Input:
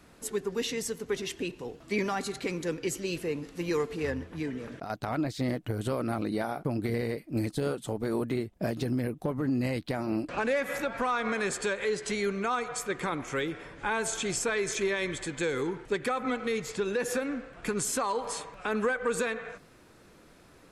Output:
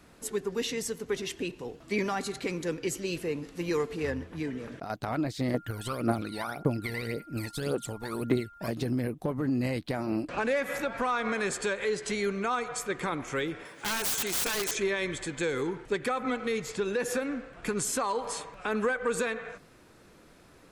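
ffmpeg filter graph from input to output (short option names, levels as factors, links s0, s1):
-filter_complex "[0:a]asettb=1/sr,asplit=3[s0][s1][s2];[s0]atrim=end=5.544[s3];[s1]atrim=start=5.54:end=8.68,asetpts=PTS-STARTPTS,afade=t=in:d=0.004:c=qsin,afade=t=out:st=3.136:d=0.004:c=qsin,aphaser=in_gain=1:out_gain=1:delay=1.2:decay=0.76:speed=1.8:type=triangular,lowshelf=f=320:g=-9.5,aeval=exprs='val(0)+0.00316*sin(2*PI*1400*n/s)':c=same[s4];[s2]atrim=start=8.676[s5];[s3][s4]acrossfade=d=0.004:c1=hsin:c2=qsin[s6];[s6][s5]acrossfade=d=0.004:c1=qsin:c2=hsin,asettb=1/sr,asplit=3[s7][s8][s9];[s7]atrim=end=13.654[s10];[s8]atrim=start=13.65:end=14.71,asetpts=PTS-STARTPTS,afade=t=in:d=0.004:c=qsin,afade=t=out:st=1.056:d=0.004:c=qsin,highpass=95,aemphasis=mode=production:type=bsi,aeval=exprs='(mod(15.8*val(0)+1,2)-1)/15.8':c=same[s11];[s9]atrim=start=14.706[s12];[s10][s11]acrossfade=d=0.004:c1=hsin:c2=qsin[s13];[s13][s12]acrossfade=d=0.004:c1=qsin:c2=hsin"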